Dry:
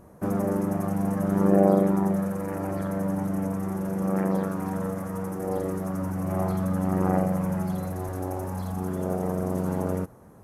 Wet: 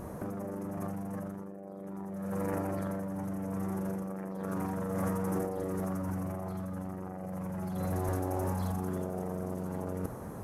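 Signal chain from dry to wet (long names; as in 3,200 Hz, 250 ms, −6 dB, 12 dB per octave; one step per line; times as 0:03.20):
compressor whose output falls as the input rises −36 dBFS, ratio −1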